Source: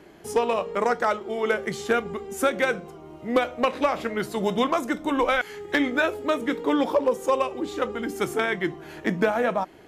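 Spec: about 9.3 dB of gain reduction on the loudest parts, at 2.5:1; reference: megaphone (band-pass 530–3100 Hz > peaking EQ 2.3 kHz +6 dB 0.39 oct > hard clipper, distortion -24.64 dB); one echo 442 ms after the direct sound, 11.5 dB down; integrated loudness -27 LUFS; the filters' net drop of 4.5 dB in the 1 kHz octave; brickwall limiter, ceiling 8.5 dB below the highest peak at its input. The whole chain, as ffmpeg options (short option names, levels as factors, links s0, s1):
-af "equalizer=f=1000:t=o:g=-5.5,acompressor=threshold=0.0224:ratio=2.5,alimiter=level_in=1.5:limit=0.0631:level=0:latency=1,volume=0.668,highpass=530,lowpass=3100,equalizer=f=2300:t=o:w=0.39:g=6,aecho=1:1:442:0.266,asoftclip=type=hard:threshold=0.0316,volume=4.73"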